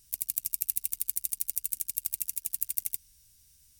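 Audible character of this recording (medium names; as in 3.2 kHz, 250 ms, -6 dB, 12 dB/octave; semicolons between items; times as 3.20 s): noise floor -62 dBFS; spectral tilt +2.5 dB/octave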